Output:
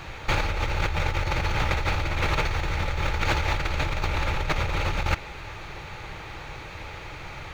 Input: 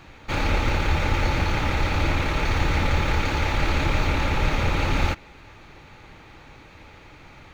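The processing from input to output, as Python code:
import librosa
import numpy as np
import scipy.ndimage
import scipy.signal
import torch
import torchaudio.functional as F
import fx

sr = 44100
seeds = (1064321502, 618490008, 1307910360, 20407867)

y = fx.peak_eq(x, sr, hz=250.0, db=-12.5, octaves=0.54)
y = fx.over_compress(y, sr, threshold_db=-28.0, ratio=-1.0)
y = F.gain(torch.from_numpy(y), 3.0).numpy()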